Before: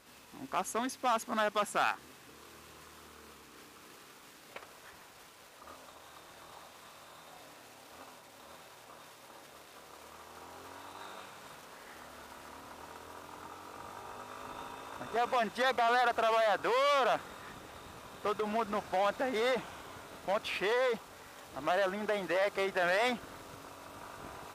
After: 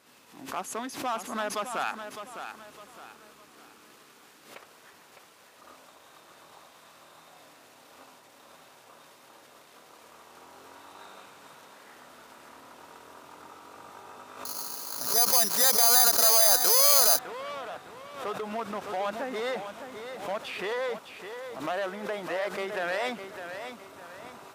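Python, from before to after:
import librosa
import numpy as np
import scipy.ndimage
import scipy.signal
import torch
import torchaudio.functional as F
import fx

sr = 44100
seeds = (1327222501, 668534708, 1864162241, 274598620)

y = scipy.signal.sosfilt(scipy.signal.butter(2, 130.0, 'highpass', fs=sr, output='sos'), x)
y = fx.echo_feedback(y, sr, ms=608, feedback_pct=37, wet_db=-9)
y = fx.resample_bad(y, sr, factor=8, down='filtered', up='zero_stuff', at=(14.45, 17.19))
y = fx.pre_swell(y, sr, db_per_s=93.0)
y = y * 10.0 ** (-1.0 / 20.0)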